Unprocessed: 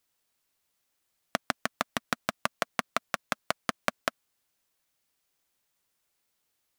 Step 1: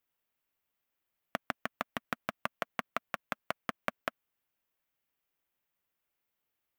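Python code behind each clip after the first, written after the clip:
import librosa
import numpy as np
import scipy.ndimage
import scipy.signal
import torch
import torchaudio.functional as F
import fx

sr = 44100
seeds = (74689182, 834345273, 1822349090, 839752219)

y = fx.band_shelf(x, sr, hz=6300.0, db=-9.5, octaves=1.7)
y = F.gain(torch.from_numpy(y), -5.5).numpy()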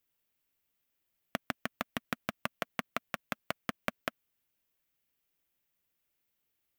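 y = fx.peak_eq(x, sr, hz=1000.0, db=-7.0, octaves=2.2)
y = F.gain(torch.from_numpy(y), 4.5).numpy()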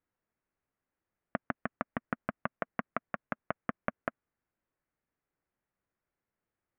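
y = scipy.signal.sosfilt(scipy.signal.butter(4, 1800.0, 'lowpass', fs=sr, output='sos'), x)
y = F.gain(torch.from_numpy(y), 2.0).numpy()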